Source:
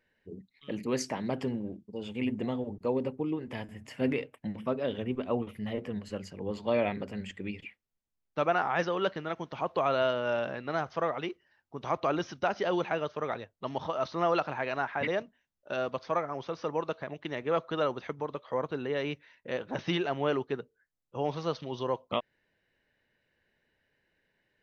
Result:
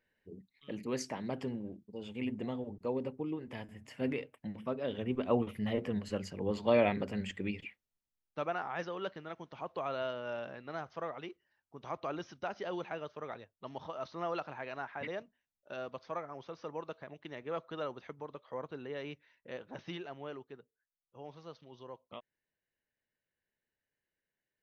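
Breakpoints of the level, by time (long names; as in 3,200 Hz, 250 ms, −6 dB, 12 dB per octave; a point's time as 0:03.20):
0:04.79 −5.5 dB
0:05.33 +1 dB
0:07.43 +1 dB
0:08.59 −9.5 dB
0:19.49 −9.5 dB
0:20.53 −17 dB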